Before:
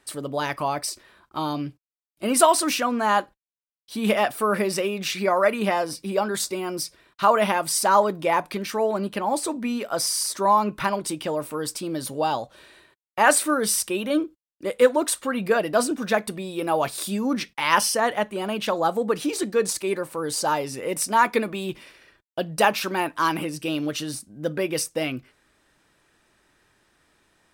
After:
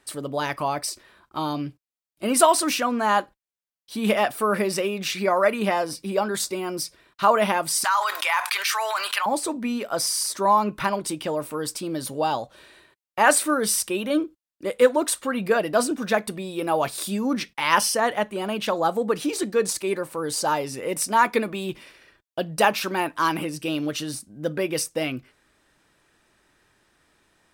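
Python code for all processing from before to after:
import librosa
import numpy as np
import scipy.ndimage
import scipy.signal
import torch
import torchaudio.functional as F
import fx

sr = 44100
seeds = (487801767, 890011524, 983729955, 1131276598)

y = fx.chain(x, sr, fx.highpass(hz=1100.0, slope=24),
    fx.env_flatten(amount_pct=70), at=(7.84, 9.26))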